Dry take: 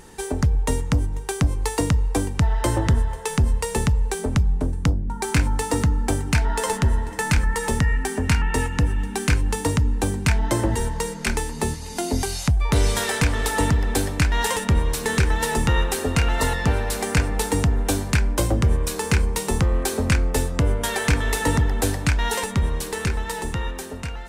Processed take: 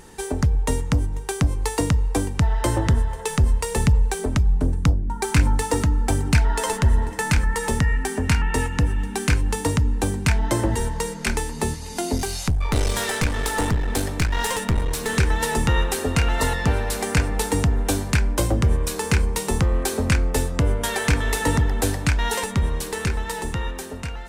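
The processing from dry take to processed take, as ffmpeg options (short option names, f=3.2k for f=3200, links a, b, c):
-filter_complex "[0:a]asettb=1/sr,asplit=3[a][b][c];[a]atrim=end=3.194[d];[b]atrim=start=3.19:end=7.13,asetpts=PTS-STARTPTS,afade=t=in:d=0.004:c=qsin,afade=t=out:st=3.936:d=0.004:c=qsin,aphaser=in_gain=1:out_gain=1:delay=3.2:decay=0.3:speed=1.3:type=sinusoidal[e];[c]atrim=start=7.126[f];[d][e]acrossfade=d=0.004:c1=hsin:c2=qsin[g];[g][f]acrossfade=d=0.004:c1=qsin:c2=hsin,asettb=1/sr,asplit=3[h][i][j];[h]atrim=end=12.164[k];[i]atrim=start=12.16:end=15.17,asetpts=PTS-STARTPTS,afade=t=in:d=0.004:c=qsin,afade=t=out:st=3.006:d=0.004:c=qsin,aeval=exprs='clip(val(0),-1,0.075)':c=same[l];[j]atrim=start=15.166[m];[k][l]acrossfade=d=0.004:c1=hsin:c2=qsin[n];[n][m]acrossfade=d=0.004:c1=qsin:c2=hsin"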